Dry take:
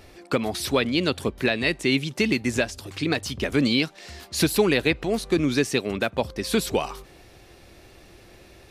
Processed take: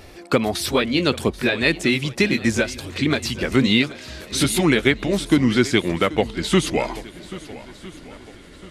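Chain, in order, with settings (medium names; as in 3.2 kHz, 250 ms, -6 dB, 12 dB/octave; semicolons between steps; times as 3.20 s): pitch bend over the whole clip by -4 st starting unshifted; shuffle delay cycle 1308 ms, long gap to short 1.5:1, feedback 34%, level -17.5 dB; trim +5.5 dB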